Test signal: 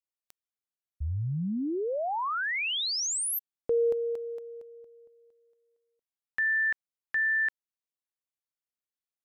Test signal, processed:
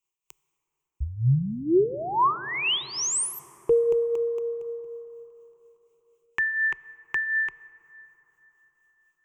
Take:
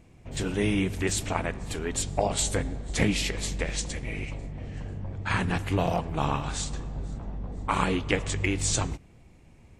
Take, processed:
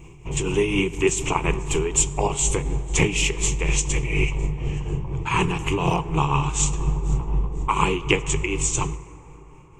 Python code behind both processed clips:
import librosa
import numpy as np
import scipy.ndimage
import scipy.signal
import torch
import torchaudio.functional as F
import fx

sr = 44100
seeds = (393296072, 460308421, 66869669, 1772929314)

y = fx.ripple_eq(x, sr, per_octave=0.71, db=15)
y = fx.rider(y, sr, range_db=4, speed_s=0.5)
y = fx.tremolo_shape(y, sr, shape='triangle', hz=4.1, depth_pct=65)
y = fx.rev_plate(y, sr, seeds[0], rt60_s=4.9, hf_ratio=0.3, predelay_ms=0, drr_db=16.5)
y = F.gain(torch.from_numpy(y), 6.5).numpy()